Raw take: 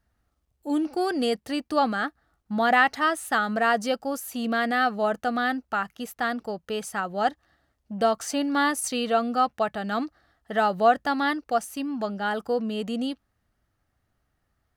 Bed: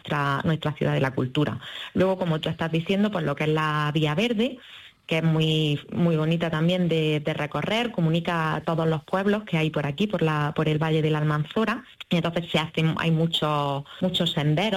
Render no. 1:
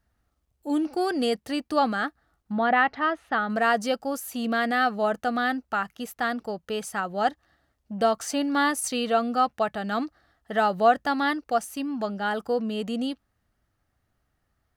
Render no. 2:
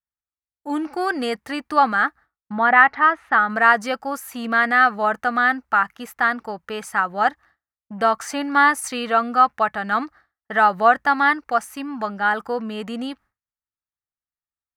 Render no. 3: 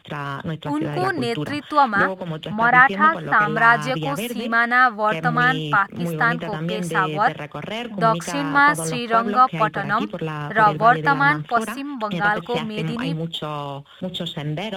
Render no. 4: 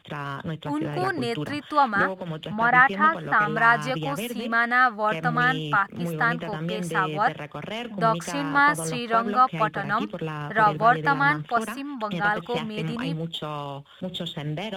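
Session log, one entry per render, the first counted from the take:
2.52–3.50 s: distance through air 290 m
expander -45 dBFS; high-order bell 1.4 kHz +10 dB
add bed -4 dB
trim -4 dB

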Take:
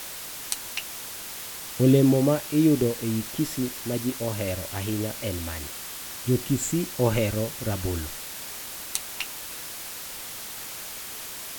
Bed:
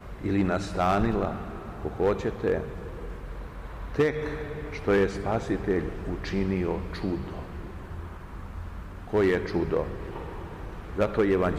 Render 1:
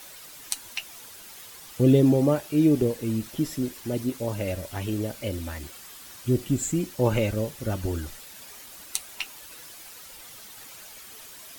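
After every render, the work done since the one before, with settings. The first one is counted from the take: noise reduction 10 dB, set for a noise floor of -38 dBFS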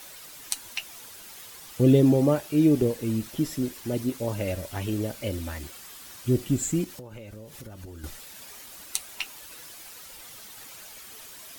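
6.84–8.04 s: compression 12:1, threshold -38 dBFS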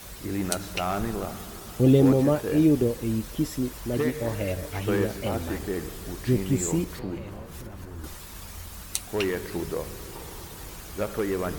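add bed -4.5 dB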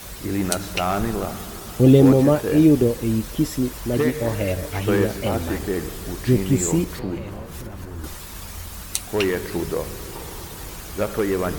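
trim +5.5 dB; peak limiter -1 dBFS, peak gain reduction 1.5 dB

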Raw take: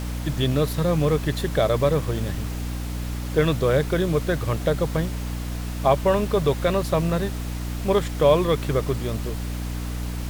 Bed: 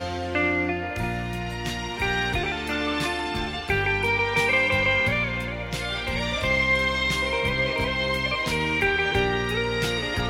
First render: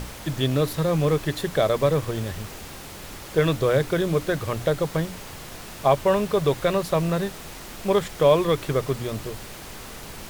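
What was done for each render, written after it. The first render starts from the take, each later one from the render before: hum notches 60/120/180/240/300 Hz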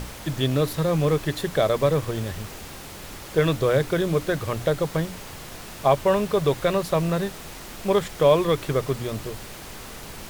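no audible change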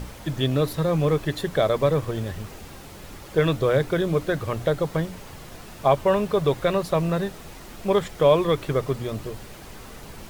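noise reduction 6 dB, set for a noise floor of -40 dBFS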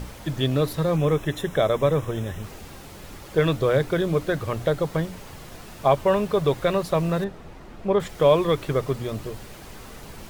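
0.96–2.43 s: Butterworth band-stop 4.5 kHz, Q 3.8; 7.24–8.00 s: low-pass 1.4 kHz 6 dB/octave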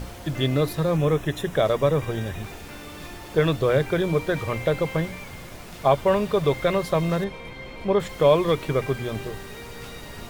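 add bed -16 dB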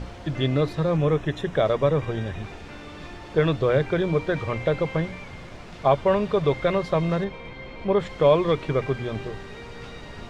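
distance through air 110 m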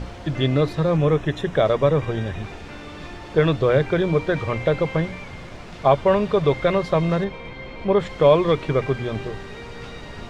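trim +3 dB

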